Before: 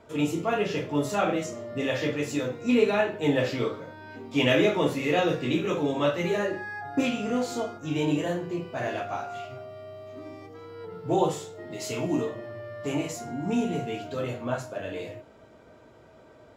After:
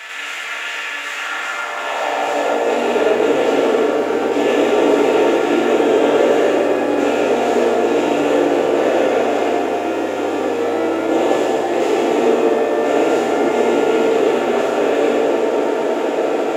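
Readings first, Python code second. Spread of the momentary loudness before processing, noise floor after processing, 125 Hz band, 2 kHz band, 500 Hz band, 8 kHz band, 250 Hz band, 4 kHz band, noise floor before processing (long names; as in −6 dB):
17 LU, −25 dBFS, −6.5 dB, +11.0 dB, +14.5 dB, +9.0 dB, +9.0 dB, +9.0 dB, −53 dBFS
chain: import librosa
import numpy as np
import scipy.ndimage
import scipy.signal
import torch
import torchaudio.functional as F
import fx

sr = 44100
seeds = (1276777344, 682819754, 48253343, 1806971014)

y = fx.bin_compress(x, sr, power=0.2)
y = fx.filter_sweep_highpass(y, sr, from_hz=1800.0, to_hz=390.0, start_s=1.04, end_s=2.93, q=2.0)
y = fx.rev_fdn(y, sr, rt60_s=3.4, lf_ratio=1.0, hf_ratio=0.45, size_ms=61.0, drr_db=-6.5)
y = y * librosa.db_to_amplitude(-9.5)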